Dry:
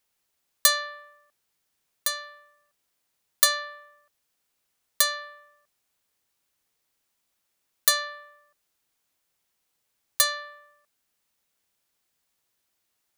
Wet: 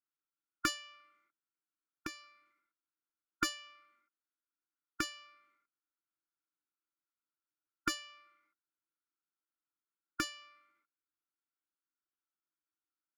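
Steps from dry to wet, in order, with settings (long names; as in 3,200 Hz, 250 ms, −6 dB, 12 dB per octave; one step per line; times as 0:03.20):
harmonic generator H 3 −12 dB, 6 −13 dB, 7 −43 dB, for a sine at −2.5 dBFS
pair of resonant band-passes 590 Hz, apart 1.8 octaves
formants moved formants +3 semitones
level +6 dB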